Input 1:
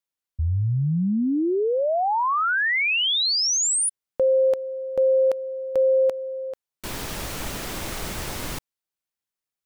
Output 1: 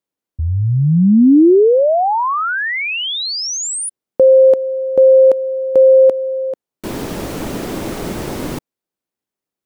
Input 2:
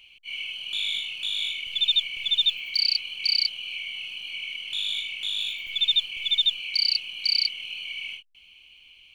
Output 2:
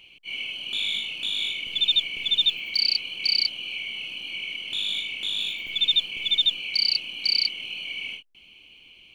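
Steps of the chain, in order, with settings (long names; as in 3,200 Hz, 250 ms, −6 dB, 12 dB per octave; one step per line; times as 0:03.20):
parametric band 300 Hz +14.5 dB 2.8 octaves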